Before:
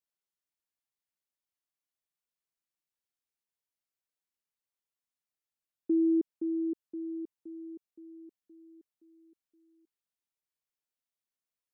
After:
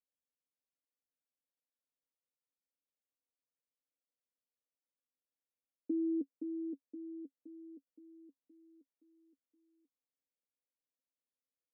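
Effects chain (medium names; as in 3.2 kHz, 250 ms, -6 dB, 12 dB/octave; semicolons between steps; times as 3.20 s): two resonant band-passes 370 Hz, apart 0.85 oct; trim +4.5 dB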